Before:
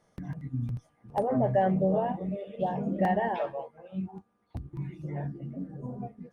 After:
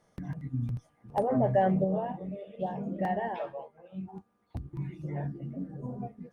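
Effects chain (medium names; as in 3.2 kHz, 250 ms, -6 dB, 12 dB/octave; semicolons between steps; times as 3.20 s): 1.84–4.08 s: flange 1.1 Hz, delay 4.7 ms, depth 2.7 ms, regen +84%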